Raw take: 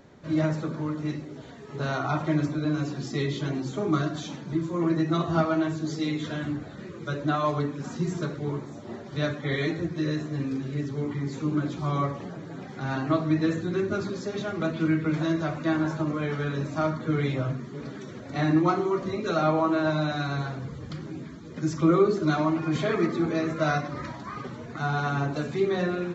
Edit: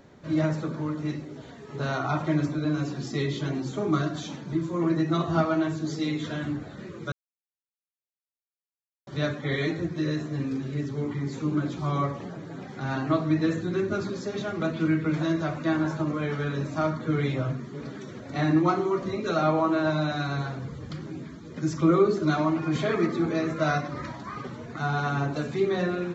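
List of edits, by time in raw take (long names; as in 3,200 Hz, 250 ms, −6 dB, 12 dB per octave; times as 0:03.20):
0:07.12–0:09.07: silence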